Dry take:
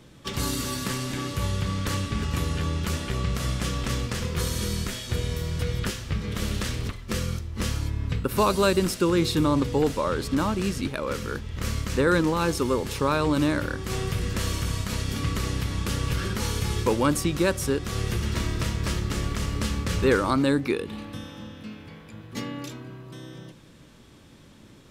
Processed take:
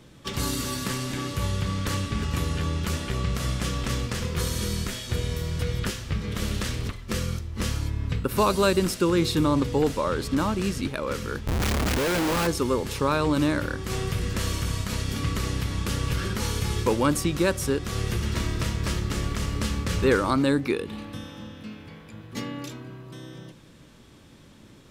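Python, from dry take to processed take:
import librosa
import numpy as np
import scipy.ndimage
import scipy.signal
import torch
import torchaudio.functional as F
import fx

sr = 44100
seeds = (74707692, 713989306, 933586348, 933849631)

y = fx.schmitt(x, sr, flips_db=-38.0, at=(11.47, 12.47))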